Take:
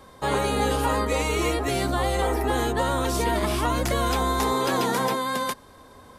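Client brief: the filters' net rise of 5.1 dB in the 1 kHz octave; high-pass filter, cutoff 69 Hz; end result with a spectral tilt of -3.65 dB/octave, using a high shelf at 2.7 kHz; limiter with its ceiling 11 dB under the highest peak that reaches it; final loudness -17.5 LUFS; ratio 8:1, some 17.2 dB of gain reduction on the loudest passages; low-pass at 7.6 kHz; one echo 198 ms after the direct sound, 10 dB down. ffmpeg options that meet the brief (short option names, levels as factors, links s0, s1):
-af "highpass=69,lowpass=7600,equalizer=f=1000:t=o:g=5,highshelf=f=2700:g=7.5,acompressor=threshold=0.0178:ratio=8,alimiter=level_in=3.16:limit=0.0631:level=0:latency=1,volume=0.316,aecho=1:1:198:0.316,volume=16.8"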